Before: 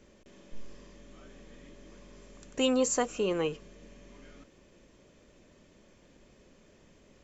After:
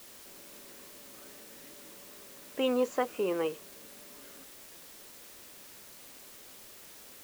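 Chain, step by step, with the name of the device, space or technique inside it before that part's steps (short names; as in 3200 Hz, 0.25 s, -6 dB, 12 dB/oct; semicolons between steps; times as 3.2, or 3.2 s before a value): wax cylinder (BPF 280–2400 Hz; wow and flutter; white noise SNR 13 dB)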